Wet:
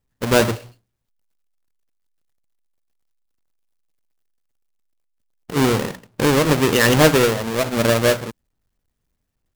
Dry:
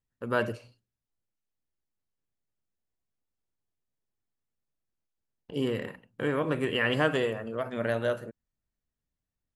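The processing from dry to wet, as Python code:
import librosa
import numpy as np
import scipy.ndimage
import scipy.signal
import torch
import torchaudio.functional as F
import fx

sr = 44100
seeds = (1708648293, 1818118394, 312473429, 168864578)

y = fx.halfwave_hold(x, sr)
y = y * 10.0 ** (8.0 / 20.0)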